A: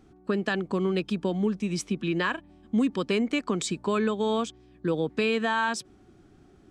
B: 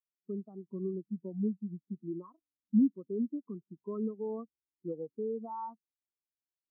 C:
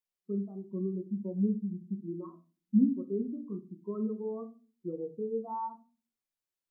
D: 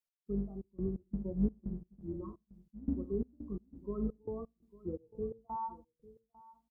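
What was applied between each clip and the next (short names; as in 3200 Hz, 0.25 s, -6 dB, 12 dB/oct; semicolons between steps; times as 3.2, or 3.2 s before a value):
Chebyshev low-pass 1300 Hz, order 5; spectral expander 2.5:1; gain -2.5 dB
shoebox room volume 160 m³, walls furnished, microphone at 1 m
octaver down 2 oct, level -5 dB; step gate "x..xxxx..x" 172 bpm -24 dB; echo 0.849 s -19.5 dB; gain -2.5 dB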